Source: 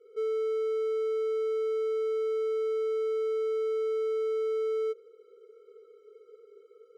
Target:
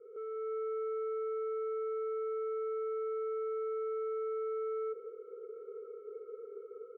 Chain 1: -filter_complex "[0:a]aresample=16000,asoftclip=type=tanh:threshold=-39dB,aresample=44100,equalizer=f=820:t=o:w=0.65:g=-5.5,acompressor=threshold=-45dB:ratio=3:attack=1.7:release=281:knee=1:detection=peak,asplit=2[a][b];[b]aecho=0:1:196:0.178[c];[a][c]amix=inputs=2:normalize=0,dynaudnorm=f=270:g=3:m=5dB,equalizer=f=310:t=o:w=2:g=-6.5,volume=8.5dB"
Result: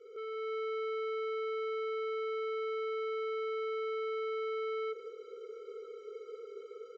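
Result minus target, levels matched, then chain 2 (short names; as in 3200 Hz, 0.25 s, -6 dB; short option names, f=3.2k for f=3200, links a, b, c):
1000 Hz band +2.5 dB
-filter_complex "[0:a]aresample=16000,asoftclip=type=tanh:threshold=-39dB,aresample=44100,lowpass=f=1.3k:w=0.5412,lowpass=f=1.3k:w=1.3066,equalizer=f=820:t=o:w=0.65:g=-5.5,acompressor=threshold=-45dB:ratio=3:attack=1.7:release=281:knee=1:detection=peak,asplit=2[a][b];[b]aecho=0:1:196:0.178[c];[a][c]amix=inputs=2:normalize=0,dynaudnorm=f=270:g=3:m=5dB,equalizer=f=310:t=o:w=2:g=-6.5,volume=8.5dB"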